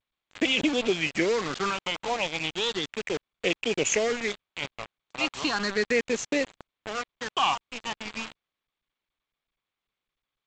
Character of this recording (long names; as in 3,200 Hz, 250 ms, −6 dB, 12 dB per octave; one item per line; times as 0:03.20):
phaser sweep stages 6, 0.35 Hz, lowest notch 400–1,400 Hz
a quantiser's noise floor 6 bits, dither none
G.722